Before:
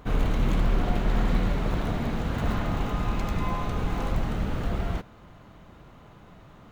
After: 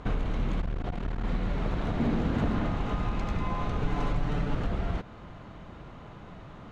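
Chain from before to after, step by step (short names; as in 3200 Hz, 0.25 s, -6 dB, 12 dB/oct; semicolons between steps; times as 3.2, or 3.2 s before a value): compressor, threshold -30 dBFS, peak gain reduction 12 dB; 1.97–2.67 bell 280 Hz +7 dB 1.3 oct; 3.81–4.55 comb 6.9 ms, depth 72%; air absorption 75 m; 0.61–1.24 core saturation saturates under 96 Hz; gain +4.5 dB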